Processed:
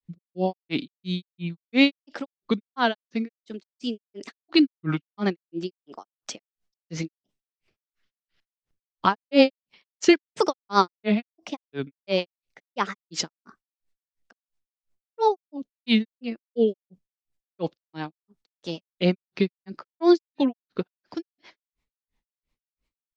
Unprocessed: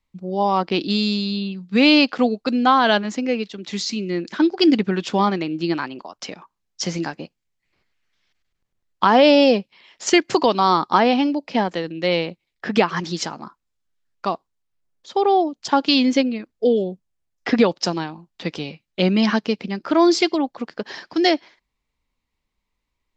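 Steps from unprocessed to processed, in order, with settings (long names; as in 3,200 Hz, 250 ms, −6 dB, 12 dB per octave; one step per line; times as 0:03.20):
rotating-speaker cabinet horn 1.1 Hz, later 8 Hz, at 0:02.10
granular cloud 192 ms, grains 2.9 per second, pitch spread up and down by 3 semitones
level +1.5 dB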